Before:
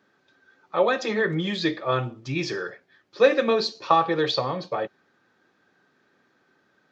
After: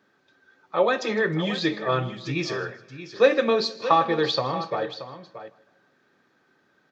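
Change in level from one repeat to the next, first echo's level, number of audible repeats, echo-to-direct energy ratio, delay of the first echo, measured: no regular repeats, -20.0 dB, 5, -11.5 dB, 158 ms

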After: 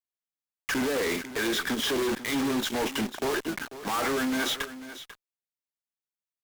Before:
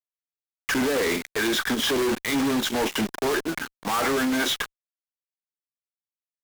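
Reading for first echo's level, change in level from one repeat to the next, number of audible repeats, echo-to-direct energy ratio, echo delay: -14.0 dB, no regular repeats, 1, -14.0 dB, 493 ms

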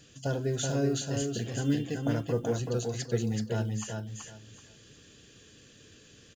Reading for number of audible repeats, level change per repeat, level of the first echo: 3, -13.0 dB, -4.0 dB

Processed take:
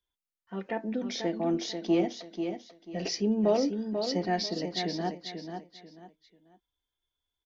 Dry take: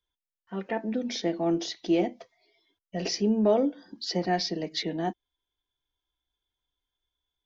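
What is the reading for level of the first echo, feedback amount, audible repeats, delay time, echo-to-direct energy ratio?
-7.0 dB, 28%, 3, 490 ms, -6.5 dB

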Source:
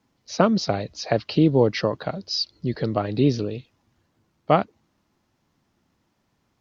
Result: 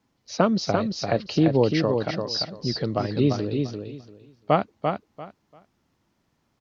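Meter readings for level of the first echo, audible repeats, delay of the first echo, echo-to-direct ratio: -5.0 dB, 3, 343 ms, -5.0 dB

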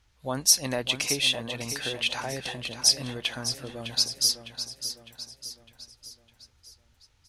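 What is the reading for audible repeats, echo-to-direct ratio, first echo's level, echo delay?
5, -9.0 dB, -10.0 dB, 606 ms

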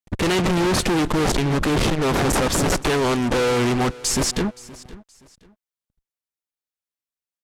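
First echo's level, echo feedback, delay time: -20.0 dB, 29%, 522 ms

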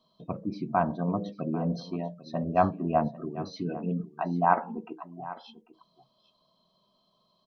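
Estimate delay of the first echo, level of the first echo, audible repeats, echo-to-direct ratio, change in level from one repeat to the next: 795 ms, -16.5 dB, 1, -16.5 dB, no regular repeats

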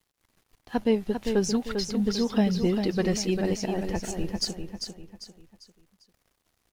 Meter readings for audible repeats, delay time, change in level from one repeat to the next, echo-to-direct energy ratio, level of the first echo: 4, 397 ms, -8.5 dB, -6.0 dB, -6.5 dB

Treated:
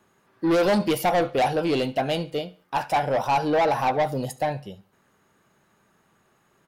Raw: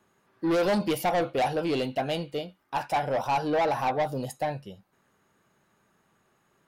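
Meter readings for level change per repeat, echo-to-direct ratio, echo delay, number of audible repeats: -8.5 dB, -21.5 dB, 72 ms, 2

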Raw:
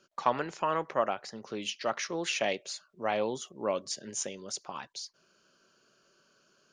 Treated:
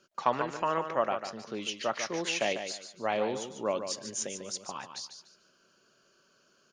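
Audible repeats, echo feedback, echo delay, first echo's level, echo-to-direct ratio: 3, 27%, 146 ms, -8.5 dB, -8.0 dB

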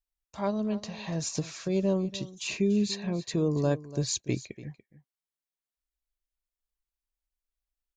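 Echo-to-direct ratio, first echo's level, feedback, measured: -16.5 dB, -16.5 dB, no regular repeats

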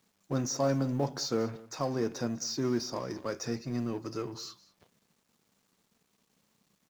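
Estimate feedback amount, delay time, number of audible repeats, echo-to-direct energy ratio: no regular repeats, 198 ms, 1, -20.5 dB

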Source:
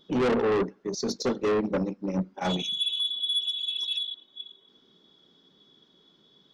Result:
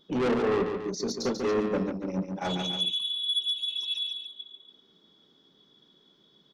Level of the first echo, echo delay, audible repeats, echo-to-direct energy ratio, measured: -6.0 dB, 142 ms, 2, -5.0 dB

